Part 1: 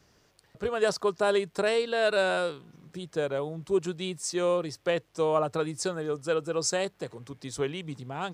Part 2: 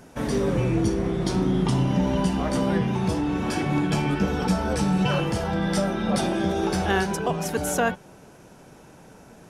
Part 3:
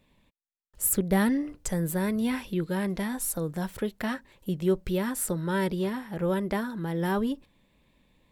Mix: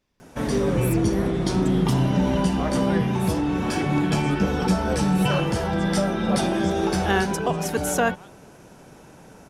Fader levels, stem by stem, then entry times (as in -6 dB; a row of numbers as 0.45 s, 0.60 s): -15.5 dB, +1.5 dB, -10.5 dB; 0.00 s, 0.20 s, 0.00 s